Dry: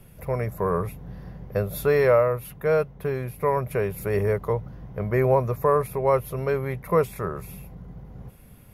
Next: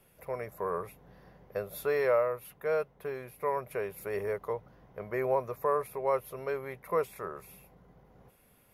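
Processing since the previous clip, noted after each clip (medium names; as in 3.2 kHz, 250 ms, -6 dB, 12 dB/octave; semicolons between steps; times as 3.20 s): tone controls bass -14 dB, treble -1 dB; trim -7 dB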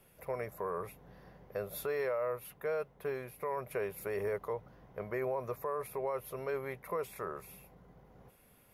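peak limiter -27 dBFS, peak gain reduction 10 dB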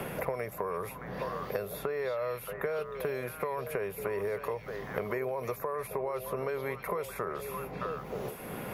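compression 2.5:1, threshold -39 dBFS, peak gain reduction 6 dB; on a send: repeats whose band climbs or falls 310 ms, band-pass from 3.5 kHz, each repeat -1.4 oct, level -5.5 dB; on the sum: three bands compressed up and down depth 100%; trim +6.5 dB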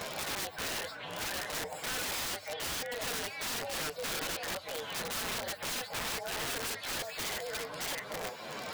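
frequency axis rescaled in octaves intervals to 128%; high-pass 690 Hz 6 dB/octave; integer overflow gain 38.5 dB; trim +7.5 dB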